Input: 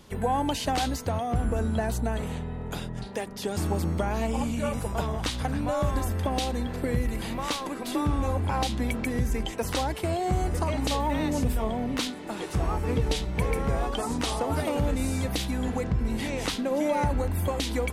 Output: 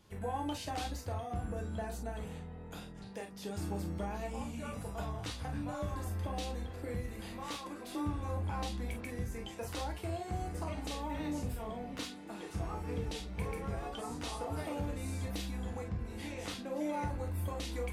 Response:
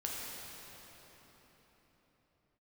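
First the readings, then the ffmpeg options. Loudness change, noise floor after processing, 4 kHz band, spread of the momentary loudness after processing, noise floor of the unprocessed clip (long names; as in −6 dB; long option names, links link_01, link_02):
−11.0 dB, −47 dBFS, −12.0 dB, 5 LU, −37 dBFS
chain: -filter_complex "[1:a]atrim=start_sample=2205,atrim=end_sample=4410,asetrate=74970,aresample=44100[link_01];[0:a][link_01]afir=irnorm=-1:irlink=0,volume=-6dB"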